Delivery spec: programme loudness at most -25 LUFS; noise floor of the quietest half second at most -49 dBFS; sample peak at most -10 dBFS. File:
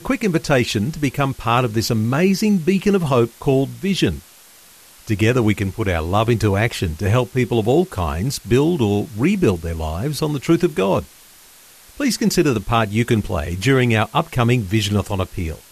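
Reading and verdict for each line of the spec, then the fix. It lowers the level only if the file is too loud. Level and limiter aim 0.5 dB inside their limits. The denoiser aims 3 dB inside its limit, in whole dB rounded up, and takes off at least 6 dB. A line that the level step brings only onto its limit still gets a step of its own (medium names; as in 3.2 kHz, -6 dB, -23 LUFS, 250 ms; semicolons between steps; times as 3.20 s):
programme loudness -19.0 LUFS: fail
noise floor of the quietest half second -46 dBFS: fail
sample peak -5.0 dBFS: fail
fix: trim -6.5 dB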